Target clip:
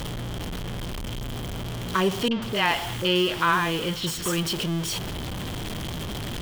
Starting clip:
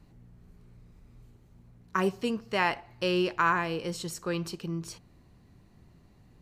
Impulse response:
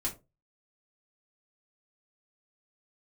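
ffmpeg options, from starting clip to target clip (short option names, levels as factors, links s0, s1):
-filter_complex "[0:a]aeval=exprs='val(0)+0.5*0.0376*sgn(val(0))':c=same,equalizer=f=3200:w=5.6:g=12.5,asettb=1/sr,asplit=3[s0][s1][s2];[s0]atrim=end=2.284[s3];[s1]atrim=start=2.28:end=4.43,asetpts=PTS-STARTPTS,afade=t=in:d=0.004:c=qsin,afade=t=out:st=2.146:d=0.004:c=qsin,acrossover=split=560|4900[s4][s5][s6];[s5]adelay=30[s7];[s6]adelay=140[s8];[s4][s7][s8]amix=inputs=3:normalize=0,atrim=end_sample=94815[s9];[s2]atrim=start=4.426[s10];[s3][s9]acrossfade=d=0.004:c1=hsin:c2=qsin[s11];[s11][s10]acrossfade=d=0.004:c1=qsin:c2=hsin,volume=1.26"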